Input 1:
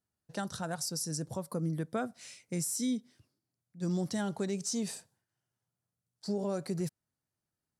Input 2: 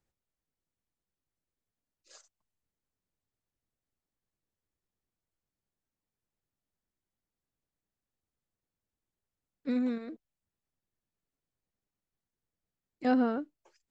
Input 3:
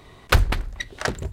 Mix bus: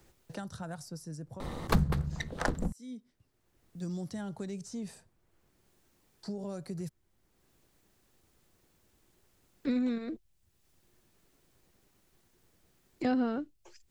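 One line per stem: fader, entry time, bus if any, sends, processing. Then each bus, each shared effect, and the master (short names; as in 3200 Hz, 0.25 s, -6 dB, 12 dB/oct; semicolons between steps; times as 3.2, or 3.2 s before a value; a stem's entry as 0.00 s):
-14.5 dB, 0.00 s, no send, gate with hold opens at -54 dBFS; auto duck -19 dB, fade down 1.20 s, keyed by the second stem
+0.5 dB, 0.00 s, no send, bell 360 Hz +7.5 dB 0.22 oct
+2.5 dB, 1.40 s, no send, ring modulator 110 Hz; bell 2400 Hz -9 dB 1.1 oct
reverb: off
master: three-band squash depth 70%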